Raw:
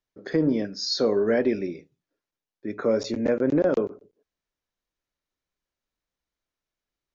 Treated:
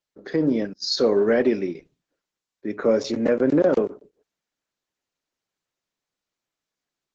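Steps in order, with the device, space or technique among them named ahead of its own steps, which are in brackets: 0.73–1.75 s: gate -31 dBFS, range -25 dB; video call (high-pass 140 Hz 12 dB/octave; level rider gain up to 3.5 dB; Opus 12 kbps 48 kHz)

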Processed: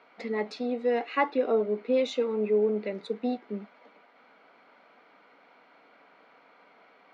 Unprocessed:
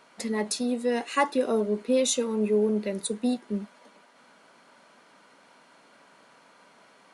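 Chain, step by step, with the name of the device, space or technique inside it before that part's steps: guitar cabinet (cabinet simulation 85–4300 Hz, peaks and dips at 120 Hz -8 dB, 290 Hz +5 dB, 460 Hz +8 dB, 740 Hz +9 dB, 1.3 kHz +6 dB, 2.2 kHz +9 dB); 1.07–1.83 s: low-pass 5.8 kHz 12 dB/octave; trim -6.5 dB

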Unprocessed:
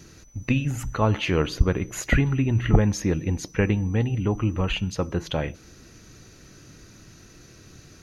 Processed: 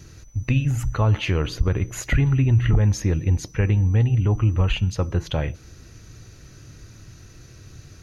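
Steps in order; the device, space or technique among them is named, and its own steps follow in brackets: car stereo with a boomy subwoofer (resonant low shelf 150 Hz +6.5 dB, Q 1.5; peak limiter -10 dBFS, peak gain reduction 11 dB)

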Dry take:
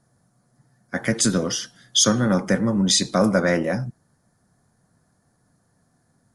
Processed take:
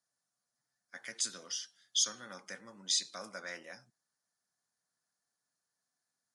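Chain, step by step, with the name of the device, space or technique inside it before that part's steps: piezo pickup straight into a mixer (low-pass 5.3 kHz 12 dB/octave; differentiator); trim -5.5 dB

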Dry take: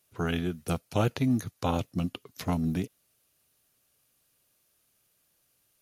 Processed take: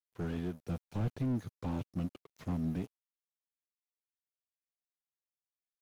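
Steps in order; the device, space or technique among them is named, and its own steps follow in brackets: early transistor amplifier (crossover distortion -50 dBFS; slew-rate limiter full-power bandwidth 13 Hz); trim -5 dB

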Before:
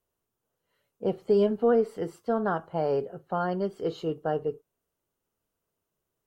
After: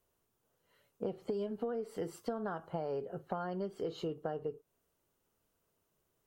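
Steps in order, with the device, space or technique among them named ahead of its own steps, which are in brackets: 1.32–2.71 s: treble shelf 4.4 kHz +5 dB; serial compression, leveller first (compression 2:1, threshold -27 dBFS, peak gain reduction 5.5 dB; compression 5:1, threshold -39 dBFS, peak gain reduction 14.5 dB); trim +3.5 dB

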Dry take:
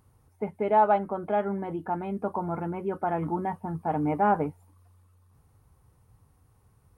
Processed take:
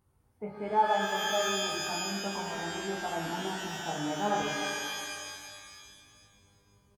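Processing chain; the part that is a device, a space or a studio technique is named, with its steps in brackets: double-tracked vocal (doubling 21 ms -7 dB; chorus 0.85 Hz, delay 15 ms, depth 4.8 ms); 3.82–4.42 s: high-pass 140 Hz 24 dB/octave; pitch-shifted reverb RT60 2 s, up +12 st, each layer -2 dB, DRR 2 dB; trim -6 dB

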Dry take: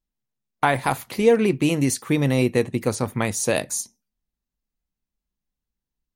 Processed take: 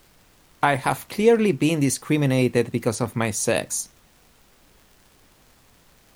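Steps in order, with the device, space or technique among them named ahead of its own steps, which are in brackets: vinyl LP (crackle; pink noise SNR 32 dB)

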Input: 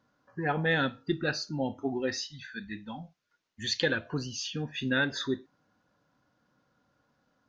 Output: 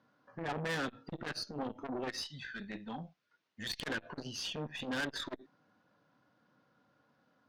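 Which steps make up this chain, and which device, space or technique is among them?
valve radio (band-pass 120–4500 Hz; valve stage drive 32 dB, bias 0.45; transformer saturation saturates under 550 Hz); trim +2.5 dB

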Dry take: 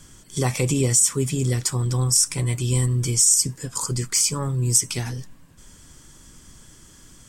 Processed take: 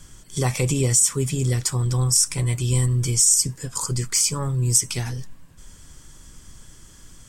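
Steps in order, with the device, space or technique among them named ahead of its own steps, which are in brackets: low shelf boost with a cut just above (bass shelf 60 Hz +7 dB; peaking EQ 270 Hz -3 dB 0.9 oct)

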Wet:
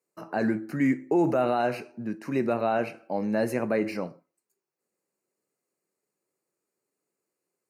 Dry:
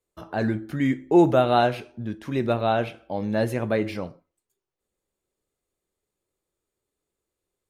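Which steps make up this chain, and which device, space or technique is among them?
PA system with an anti-feedback notch (high-pass 150 Hz 24 dB/octave; Butterworth band-stop 3.4 kHz, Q 2.6; peak limiter -15.5 dBFS, peak gain reduction 8.5 dB)

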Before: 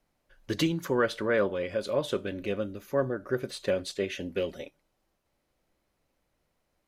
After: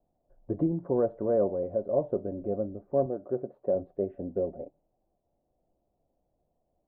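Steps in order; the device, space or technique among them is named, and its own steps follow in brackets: under water (low-pass 740 Hz 24 dB/octave; peaking EQ 700 Hz +9 dB 0.32 oct); 3.06–3.75 s: high-pass 220 Hz 6 dB/octave

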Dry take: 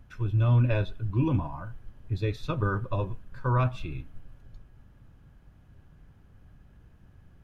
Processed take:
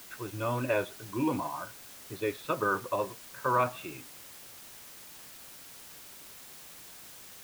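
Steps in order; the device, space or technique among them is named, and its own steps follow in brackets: wax cylinder (band-pass 380–2700 Hz; wow and flutter; white noise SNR 14 dB); trim +4 dB

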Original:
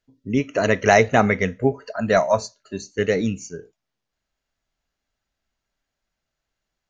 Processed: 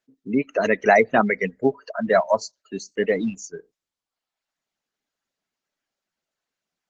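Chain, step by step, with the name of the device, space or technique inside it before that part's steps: reverb removal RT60 1 s; 1.40–2.44 s: expander -48 dBFS; noise-suppressed video call (high-pass 170 Hz 24 dB/octave; spectral gate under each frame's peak -25 dB strong; Opus 16 kbps 48 kHz)

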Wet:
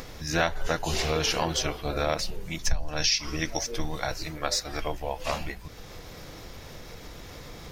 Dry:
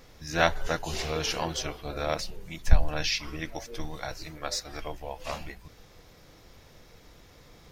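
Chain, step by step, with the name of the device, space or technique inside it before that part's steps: 2.59–3.72 s: peaking EQ 5.7 kHz +10 dB 0.64 oct; upward and downward compression (upward compressor, threshold -41 dBFS; compression 4:1, threshold -28 dBFS, peak gain reduction 16.5 dB); trim +6 dB

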